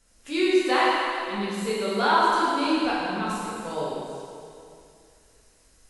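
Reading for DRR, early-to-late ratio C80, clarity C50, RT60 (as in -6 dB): -8.0 dB, -1.0 dB, -3.5 dB, 2.5 s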